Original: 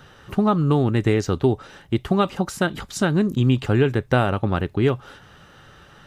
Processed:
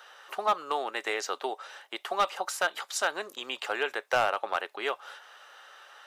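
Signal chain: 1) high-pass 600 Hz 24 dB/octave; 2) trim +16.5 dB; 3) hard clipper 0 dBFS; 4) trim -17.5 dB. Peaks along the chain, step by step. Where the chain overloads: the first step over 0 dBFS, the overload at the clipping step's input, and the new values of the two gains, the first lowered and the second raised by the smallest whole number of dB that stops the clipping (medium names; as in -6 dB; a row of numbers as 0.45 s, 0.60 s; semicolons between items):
-8.5 dBFS, +8.0 dBFS, 0.0 dBFS, -17.5 dBFS; step 2, 8.0 dB; step 2 +8.5 dB, step 4 -9.5 dB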